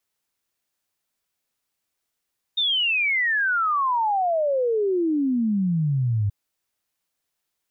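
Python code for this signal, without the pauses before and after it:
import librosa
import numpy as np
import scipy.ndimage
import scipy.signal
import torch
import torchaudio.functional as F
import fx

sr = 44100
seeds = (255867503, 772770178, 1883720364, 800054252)

y = fx.ess(sr, length_s=3.73, from_hz=3700.0, to_hz=98.0, level_db=-19.0)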